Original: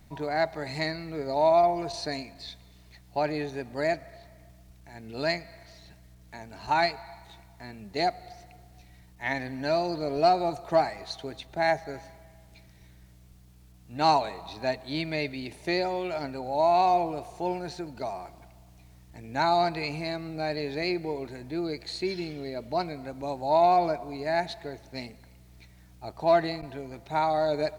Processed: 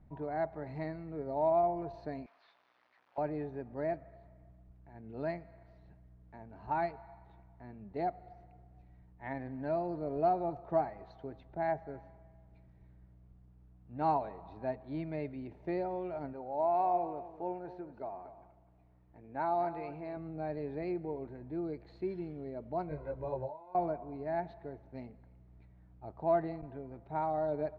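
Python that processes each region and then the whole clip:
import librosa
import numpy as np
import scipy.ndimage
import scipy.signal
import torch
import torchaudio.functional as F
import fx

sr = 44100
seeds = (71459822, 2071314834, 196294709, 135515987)

y = fx.chain(x, sr, fx.delta_mod(bps=32000, step_db=-41.0),
    fx.highpass(hz=1100.0, slope=12), at=(2.26, 3.18))
y = fx.chain(y, sr, fx.bass_treble(bass_db=-9, treble_db=-5),
    fx.echo_single(ms=244, db=-13.5), at=(16.33, 20.17))
y = fx.chain(y, sr, fx.over_compress(threshold_db=-32.0, ratio=-1.0),
    fx.comb(ms=2.0, depth=0.75),
    fx.detune_double(cents=14), at=(22.89, 23.75))
y = scipy.signal.sosfilt(scipy.signal.butter(2, 1200.0, 'lowpass', fs=sr, output='sos'), y)
y = fx.low_shelf(y, sr, hz=370.0, db=3.5)
y = F.gain(torch.from_numpy(y), -8.0).numpy()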